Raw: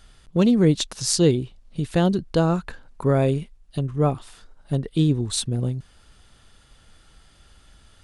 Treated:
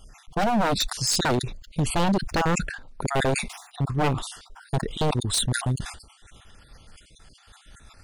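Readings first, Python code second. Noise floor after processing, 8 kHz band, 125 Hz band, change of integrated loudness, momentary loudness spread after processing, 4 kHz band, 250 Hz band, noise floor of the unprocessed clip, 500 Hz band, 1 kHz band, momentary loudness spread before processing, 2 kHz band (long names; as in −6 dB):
−56 dBFS, +0.5 dB, −4.5 dB, −3.0 dB, 10 LU, +2.0 dB, −6.5 dB, −55 dBFS, −4.5 dB, +5.5 dB, 11 LU, +7.5 dB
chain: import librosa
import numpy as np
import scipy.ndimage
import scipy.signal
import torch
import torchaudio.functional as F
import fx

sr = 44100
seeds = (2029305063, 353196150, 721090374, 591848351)

y = fx.spec_dropout(x, sr, seeds[0], share_pct=40)
y = 10.0 ** (-19.5 / 20.0) * (np.abs((y / 10.0 ** (-19.5 / 20.0) + 3.0) % 4.0 - 2.0) - 1.0)
y = fx.sustainer(y, sr, db_per_s=83.0)
y = y * librosa.db_to_amplitude(3.0)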